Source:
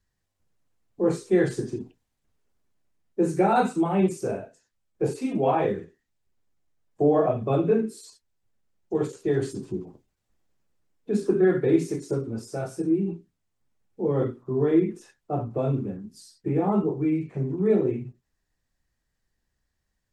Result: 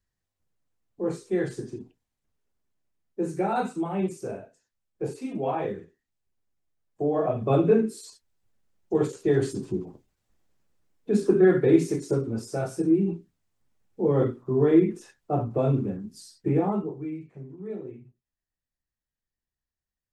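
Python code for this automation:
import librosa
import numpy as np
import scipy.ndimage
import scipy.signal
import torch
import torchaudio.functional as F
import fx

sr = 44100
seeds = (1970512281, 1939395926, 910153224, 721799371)

y = fx.gain(x, sr, db=fx.line((7.12, -5.5), (7.52, 2.0), (16.55, 2.0), (16.82, -6.5), (17.49, -14.5)))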